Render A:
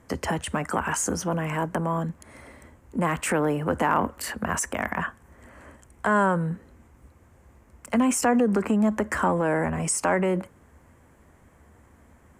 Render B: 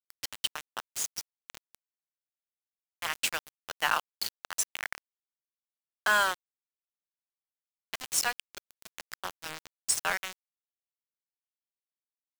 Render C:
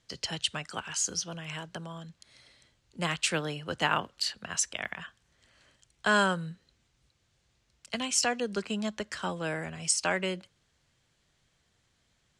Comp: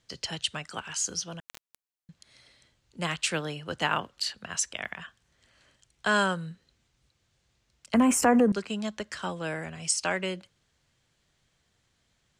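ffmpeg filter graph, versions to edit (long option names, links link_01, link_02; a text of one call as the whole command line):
ffmpeg -i take0.wav -i take1.wav -i take2.wav -filter_complex "[2:a]asplit=3[link_01][link_02][link_03];[link_01]atrim=end=1.402[link_04];[1:a]atrim=start=1.398:end=2.092[link_05];[link_02]atrim=start=2.088:end=7.942[link_06];[0:a]atrim=start=7.938:end=8.522[link_07];[link_03]atrim=start=8.518[link_08];[link_04][link_05]acrossfade=duration=0.004:curve1=hsin:curve2=hsin[link_09];[link_09][link_06]acrossfade=duration=0.004:curve1=hsin:curve2=hsin[link_10];[link_10][link_07]acrossfade=duration=0.004:curve1=hsin:curve2=hsin[link_11];[link_11][link_08]acrossfade=duration=0.004:curve1=hsin:curve2=hsin" out.wav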